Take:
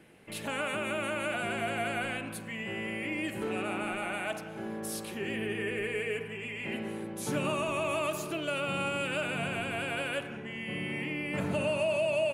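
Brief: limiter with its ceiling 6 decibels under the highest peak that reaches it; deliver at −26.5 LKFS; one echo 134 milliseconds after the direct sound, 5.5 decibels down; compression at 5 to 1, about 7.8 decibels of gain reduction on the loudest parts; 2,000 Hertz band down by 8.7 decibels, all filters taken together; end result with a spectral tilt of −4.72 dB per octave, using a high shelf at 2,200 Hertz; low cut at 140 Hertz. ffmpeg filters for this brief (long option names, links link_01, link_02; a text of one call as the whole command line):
ffmpeg -i in.wav -af "highpass=140,equalizer=frequency=2000:width_type=o:gain=-7,highshelf=frequency=2200:gain=-8,acompressor=threshold=-36dB:ratio=5,alimiter=level_in=9dB:limit=-24dB:level=0:latency=1,volume=-9dB,aecho=1:1:134:0.531,volume=14.5dB" out.wav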